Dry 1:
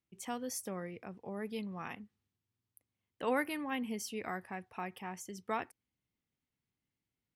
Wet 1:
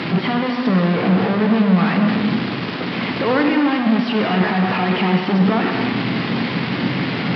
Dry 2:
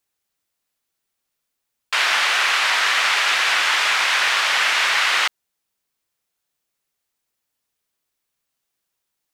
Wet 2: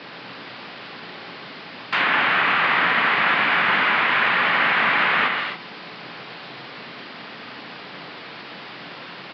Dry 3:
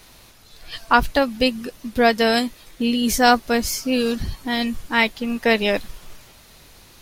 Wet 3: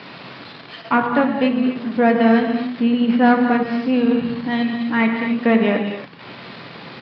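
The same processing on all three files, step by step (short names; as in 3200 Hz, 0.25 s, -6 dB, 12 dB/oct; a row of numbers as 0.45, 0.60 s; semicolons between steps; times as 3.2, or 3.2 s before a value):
delta modulation 64 kbps, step -26.5 dBFS; downsampling 11025 Hz; non-linear reverb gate 0.3 s flat, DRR 3 dB; tube stage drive 9 dB, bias 0.5; dynamic EQ 200 Hz, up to +4 dB, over -39 dBFS, Q 1.7; treble ducked by the level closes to 2900 Hz, closed at -17 dBFS; HPF 150 Hz 24 dB/oct; tone controls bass +5 dB, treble -14 dB; notches 50/100/150/200 Hz; match loudness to -18 LUFS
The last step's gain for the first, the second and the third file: +14.0, +3.0, +1.5 dB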